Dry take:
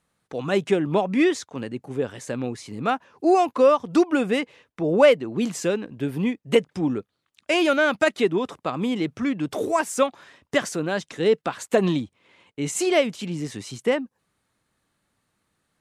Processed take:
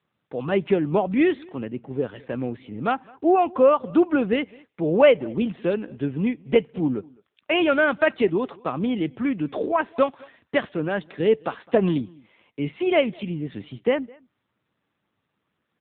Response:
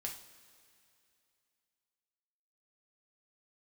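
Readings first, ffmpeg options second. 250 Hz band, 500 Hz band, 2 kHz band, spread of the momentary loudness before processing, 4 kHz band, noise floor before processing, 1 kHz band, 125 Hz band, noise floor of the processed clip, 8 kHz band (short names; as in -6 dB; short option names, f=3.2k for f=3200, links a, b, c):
+0.5 dB, 0.0 dB, -0.5 dB, 13 LU, -3.0 dB, -76 dBFS, -0.5 dB, +0.5 dB, -78 dBFS, under -40 dB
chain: -filter_complex "[0:a]asplit=2[a][b];[b]adelay=209.9,volume=-25dB,highshelf=f=4k:g=-4.72[c];[a][c]amix=inputs=2:normalize=0,asplit=2[d][e];[1:a]atrim=start_sample=2205,afade=t=out:st=0.2:d=0.01,atrim=end_sample=9261[f];[e][f]afir=irnorm=-1:irlink=0,volume=-19dB[g];[d][g]amix=inputs=2:normalize=0" -ar 8000 -c:a libopencore_amrnb -b:a 7400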